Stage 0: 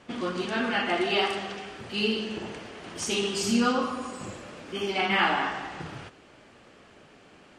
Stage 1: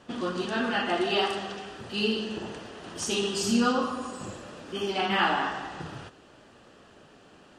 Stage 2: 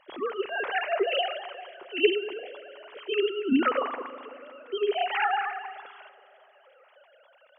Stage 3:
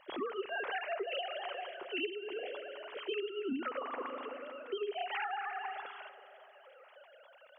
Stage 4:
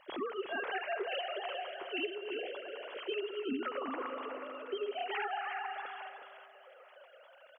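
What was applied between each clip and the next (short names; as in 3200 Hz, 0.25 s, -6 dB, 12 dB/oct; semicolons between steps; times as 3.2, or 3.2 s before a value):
bell 2200 Hz -11.5 dB 0.21 oct
sine-wave speech; notches 60/120/180/240 Hz; spring tank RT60 3.1 s, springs 38 ms, chirp 55 ms, DRR 18 dB
compressor 16:1, threshold -34 dBFS, peak gain reduction 19.5 dB
echo 0.365 s -7.5 dB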